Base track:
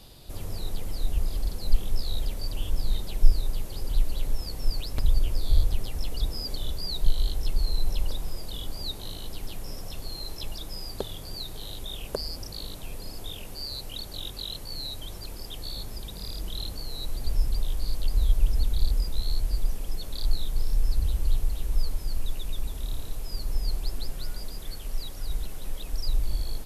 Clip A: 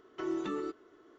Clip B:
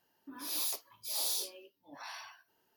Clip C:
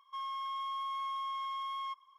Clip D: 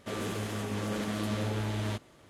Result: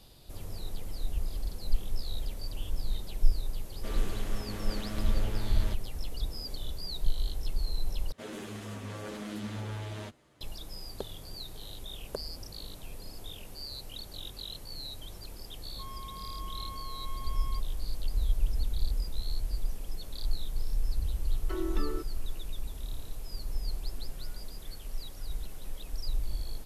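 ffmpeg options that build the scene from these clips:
-filter_complex "[4:a]asplit=2[s0][s1];[0:a]volume=0.501[s2];[s1]asplit=2[s3][s4];[s4]adelay=9.1,afreqshift=-1.1[s5];[s3][s5]amix=inputs=2:normalize=1[s6];[s2]asplit=2[s7][s8];[s7]atrim=end=8.124[s9];[s6]atrim=end=2.29,asetpts=PTS-STARTPTS,volume=0.668[s10];[s8]atrim=start=10.406[s11];[s0]atrim=end=2.29,asetpts=PTS-STARTPTS,volume=0.501,afade=t=in:d=0.004:c=hsin,afade=t=out:st=2.286:d=0.004:c=hsin,adelay=166257S[s12];[3:a]atrim=end=2.18,asetpts=PTS-STARTPTS,volume=0.422,afade=t=in:d=0.004:c=hsin,afade=t=out:st=2.176:d=0.004:c=hsin,adelay=15660[s13];[1:a]atrim=end=1.18,asetpts=PTS-STARTPTS,volume=0.891,afade=t=in:d=0.004:c=hsin,afade=t=out:st=1.176:d=0.004:c=hsin,adelay=21310[s14];[s9][s10]acrossfade=d=0.004:c1=hsin:c2=hsin[s15];[s15][s11]acrossfade=d=0.004:c1=hsin:c2=hsin[s16];[s16][s12][s13][s14]amix=inputs=4:normalize=0"

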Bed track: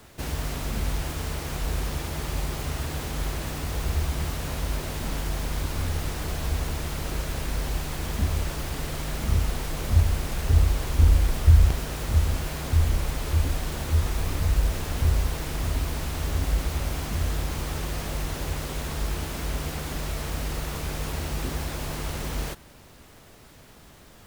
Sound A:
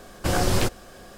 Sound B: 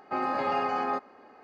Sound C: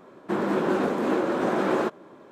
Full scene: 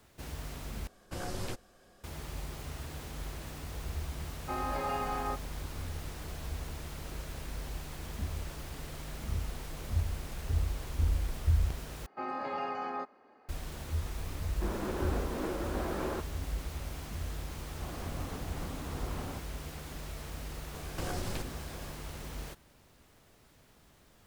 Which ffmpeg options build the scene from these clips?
-filter_complex "[1:a]asplit=2[s0][s1];[2:a]asplit=2[s2][s3];[3:a]asplit=2[s4][s5];[0:a]volume=0.266[s6];[s5]afreqshift=-280[s7];[s1]acompressor=threshold=0.0355:ratio=6:attack=3.2:release=140:knee=1:detection=peak[s8];[s6]asplit=3[s9][s10][s11];[s9]atrim=end=0.874[s12];[s0]atrim=end=1.17,asetpts=PTS-STARTPTS,volume=0.158[s13];[s10]atrim=start=2.036:end=12.064[s14];[s3]atrim=end=1.43,asetpts=PTS-STARTPTS,volume=0.398[s15];[s11]atrim=start=13.486[s16];[s2]atrim=end=1.43,asetpts=PTS-STARTPTS,volume=0.473,afade=t=in:d=0.004:c=hsin,afade=t=out:st=1.426:d=0.004:c=hsin,adelay=192717S[s17];[s4]atrim=end=2.31,asetpts=PTS-STARTPTS,volume=0.251,afade=t=in:d=0.004:c=hsin,afade=t=out:st=2.306:d=0.004:c=hsin,adelay=14320[s18];[s7]atrim=end=2.31,asetpts=PTS-STARTPTS,volume=0.158,afade=t=in:d=0.004:c=hsin,afade=t=out:st=2.306:d=0.004:c=hsin,adelay=17500[s19];[s8]atrim=end=1.17,asetpts=PTS-STARTPTS,volume=0.596,afade=t=in:d=0.004:c=hsin,afade=t=out:st=1.166:d=0.004:c=hsin,adelay=20740[s20];[s12][s13]acrossfade=d=0.004:c1=hsin:c2=hsin[s21];[s21][s14]acrossfade=d=0.004:c1=hsin:c2=hsin[s22];[s22][s15]acrossfade=d=0.004:c1=hsin:c2=hsin[s23];[s23][s16]acrossfade=d=0.004:c1=hsin:c2=hsin[s24];[s24][s17][s18][s19][s20]amix=inputs=5:normalize=0"

